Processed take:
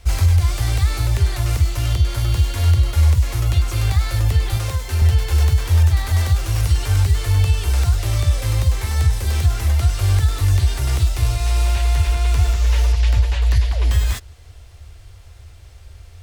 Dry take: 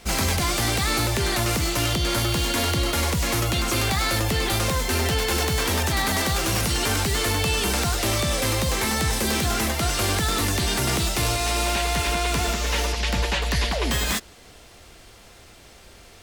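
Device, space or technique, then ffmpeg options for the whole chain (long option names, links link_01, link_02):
car stereo with a boomy subwoofer: -filter_complex "[0:a]lowshelf=frequency=130:width_type=q:width=3:gain=13.5,alimiter=limit=-2dB:level=0:latency=1:release=340,asettb=1/sr,asplit=3[link_01][link_02][link_03];[link_01]atrim=end=4.574[link_04];[link_02]atrim=start=4.57:end=5.02,asetpts=PTS-STARTPTS,afade=type=in:duration=0.004:curve=qsin,afade=type=out:start_time=0.446:duration=0.004:curve=qsin,highpass=frequency=130:poles=1[link_05];[link_03]atrim=start=5.016[link_06];[link_04][link_05]acrossfade=duration=0.004:curve1=hsin:curve2=qsin[link_07];[link_07][link_06]acrossfade=duration=0.004:curve1=qsin:curve2=hsin,volume=-5dB"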